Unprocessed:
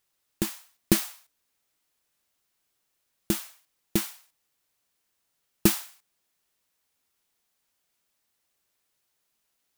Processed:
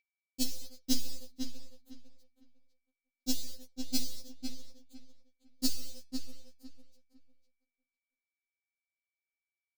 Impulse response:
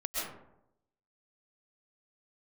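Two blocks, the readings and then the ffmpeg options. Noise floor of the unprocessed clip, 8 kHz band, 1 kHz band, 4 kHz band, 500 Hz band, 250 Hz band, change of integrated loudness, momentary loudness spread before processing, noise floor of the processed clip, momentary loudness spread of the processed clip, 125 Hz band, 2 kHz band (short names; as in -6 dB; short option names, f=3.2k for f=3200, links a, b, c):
-77 dBFS, -5.5 dB, -16.0 dB, -1.5 dB, -17.5 dB, -7.5 dB, -9.5 dB, 18 LU, under -85 dBFS, 22 LU, under -15 dB, -16.5 dB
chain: -filter_complex "[0:a]acompressor=threshold=-29dB:ratio=6,highpass=f=100:p=1,aecho=1:1:323|646|969|1292:0.0708|0.0404|0.023|0.0131,asplit=2[a][b];[1:a]atrim=start_sample=2205,lowpass=3.1k[c];[b][c]afir=irnorm=-1:irlink=0,volume=-16.5dB[d];[a][d]amix=inputs=2:normalize=0,acrusher=bits=5:dc=4:mix=0:aa=0.000001,flanger=delay=7.1:depth=5.7:regen=84:speed=1.4:shape=sinusoidal,lowshelf=f=450:g=8.5,asplit=2[e][f];[f]adelay=503,lowpass=f=3k:p=1,volume=-5.5dB,asplit=2[g][h];[h]adelay=503,lowpass=f=3k:p=1,volume=0.24,asplit=2[i][j];[j]adelay=503,lowpass=f=3k:p=1,volume=0.24[k];[g][i][k]amix=inputs=3:normalize=0[l];[e][l]amix=inputs=2:normalize=0,aeval=exprs='val(0)+0.000251*sin(2*PI*2300*n/s)':c=same,firequalizer=gain_entry='entry(410,0);entry(990,-17);entry(4500,13);entry(8900,1)':delay=0.05:min_phase=1,afftfilt=real='re*3.46*eq(mod(b,12),0)':imag='im*3.46*eq(mod(b,12),0)':win_size=2048:overlap=0.75,volume=6dB"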